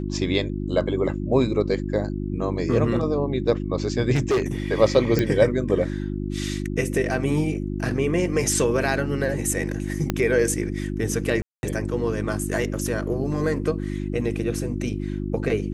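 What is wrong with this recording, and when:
hum 50 Hz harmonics 7 -28 dBFS
4.14–4.42 clipped -17 dBFS
5.19 pop -9 dBFS
10.1 pop -8 dBFS
11.42–11.63 gap 0.211 s

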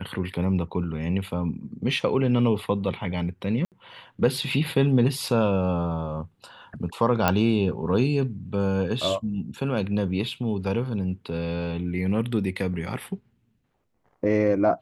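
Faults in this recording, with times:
3.65–3.72 gap 68 ms
7.28 pop -6 dBFS

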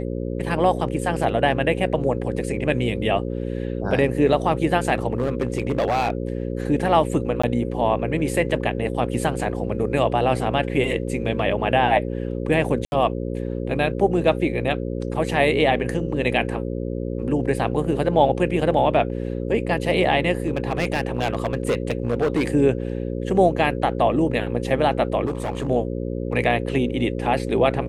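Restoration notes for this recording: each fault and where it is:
buzz 60 Hz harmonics 9 -27 dBFS
5.13–6.1 clipped -16.5 dBFS
7.42–7.43 gap 15 ms
12.85–12.92 gap 71 ms
20.46–22.47 clipped -16 dBFS
25.25–25.68 clipped -21 dBFS

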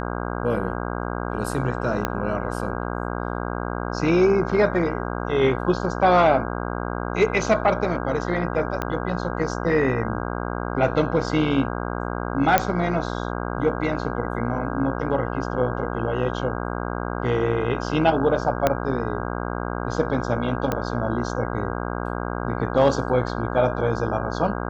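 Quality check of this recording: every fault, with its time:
buzz 60 Hz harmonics 27 -28 dBFS
2.05 pop -8 dBFS
8.82 pop -12 dBFS
12.58 pop -2 dBFS
18.67 pop -5 dBFS
20.72 pop -10 dBFS

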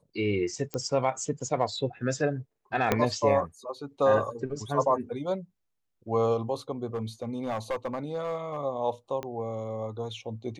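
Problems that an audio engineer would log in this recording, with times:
0.74 pop -17 dBFS
2.92 pop -9 dBFS
6.94–8.58 clipped -25.5 dBFS
9.23 pop -21 dBFS

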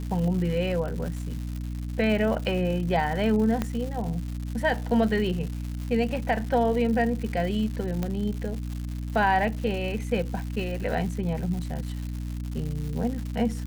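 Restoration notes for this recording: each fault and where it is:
crackle 240/s -33 dBFS
hum 60 Hz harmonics 5 -32 dBFS
3.62 pop -13 dBFS
8.03 pop -16 dBFS

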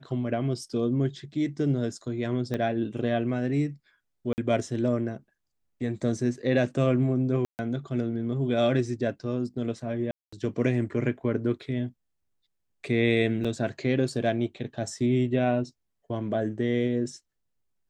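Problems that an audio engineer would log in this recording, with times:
2.54 pop -18 dBFS
4.33–4.38 gap 49 ms
7.45–7.59 gap 0.139 s
10.11–10.32 gap 0.215 s
13.44–13.45 gap 6.1 ms

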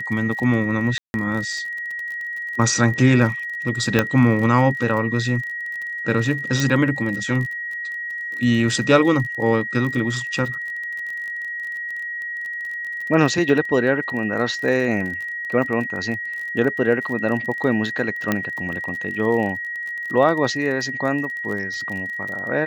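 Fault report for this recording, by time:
crackle 31/s -28 dBFS
tone 1900 Hz -26 dBFS
0.98–1.14 gap 0.161 s
3.99 pop -3 dBFS
6.6 pop
18.32 pop -6 dBFS

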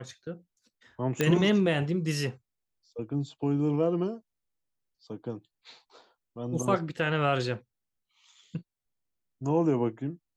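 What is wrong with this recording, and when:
1.21 pop -11 dBFS

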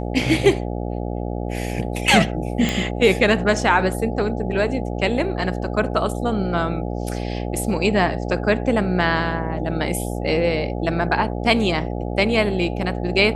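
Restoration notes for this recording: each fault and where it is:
buzz 60 Hz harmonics 14 -26 dBFS
2.69 pop -7 dBFS

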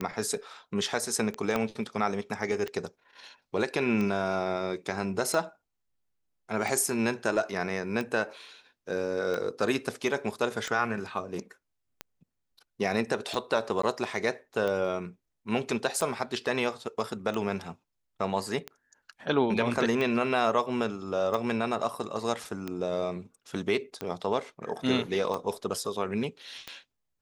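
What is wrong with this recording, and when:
tick 45 rpm -19 dBFS
1.56 pop -14 dBFS
13.82–13.83 gap 14 ms

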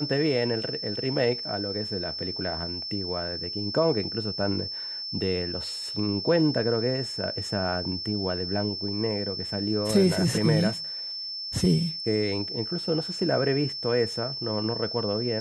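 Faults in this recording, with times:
tone 5300 Hz -32 dBFS

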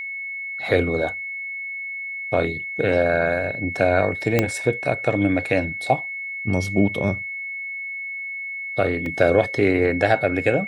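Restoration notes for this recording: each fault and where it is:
tone 2200 Hz -28 dBFS
4.39 pop -4 dBFS
9.06 gap 2.1 ms

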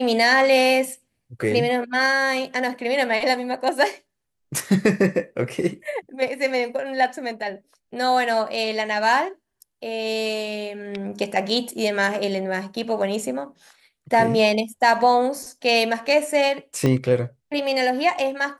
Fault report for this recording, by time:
16.86 pop -10 dBFS

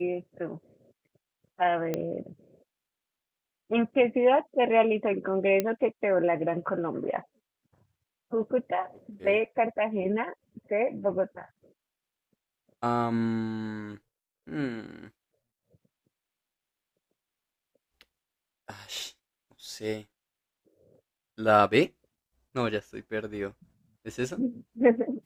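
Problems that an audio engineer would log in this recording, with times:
1.94 pop -16 dBFS
5.6 pop -12 dBFS

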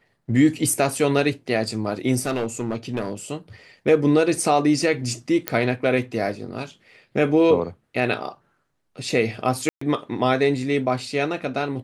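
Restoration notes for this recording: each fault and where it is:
2.21–3.13 clipped -19.5 dBFS
5.48 pop -4 dBFS
9.69–9.81 gap 0.124 s

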